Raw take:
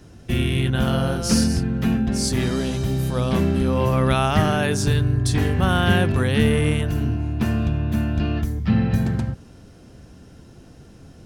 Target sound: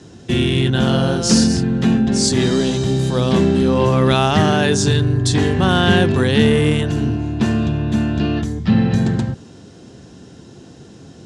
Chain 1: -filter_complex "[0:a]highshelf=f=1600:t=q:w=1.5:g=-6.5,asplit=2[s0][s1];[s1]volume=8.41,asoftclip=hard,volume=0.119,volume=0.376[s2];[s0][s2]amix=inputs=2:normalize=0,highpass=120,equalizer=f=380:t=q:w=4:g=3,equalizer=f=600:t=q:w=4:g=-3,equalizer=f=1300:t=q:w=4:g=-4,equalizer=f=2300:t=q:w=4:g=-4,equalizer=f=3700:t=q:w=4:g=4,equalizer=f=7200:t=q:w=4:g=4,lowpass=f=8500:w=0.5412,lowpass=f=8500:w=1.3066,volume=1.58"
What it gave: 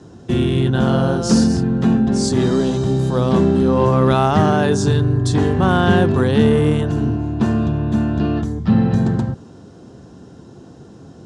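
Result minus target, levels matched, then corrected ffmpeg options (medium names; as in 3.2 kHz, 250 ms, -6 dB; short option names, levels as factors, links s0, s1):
4 kHz band -7.5 dB
-filter_complex "[0:a]asplit=2[s0][s1];[s1]volume=8.41,asoftclip=hard,volume=0.119,volume=0.376[s2];[s0][s2]amix=inputs=2:normalize=0,highpass=120,equalizer=f=380:t=q:w=4:g=3,equalizer=f=600:t=q:w=4:g=-3,equalizer=f=1300:t=q:w=4:g=-4,equalizer=f=2300:t=q:w=4:g=-4,equalizer=f=3700:t=q:w=4:g=4,equalizer=f=7200:t=q:w=4:g=4,lowpass=f=8500:w=0.5412,lowpass=f=8500:w=1.3066,volume=1.58"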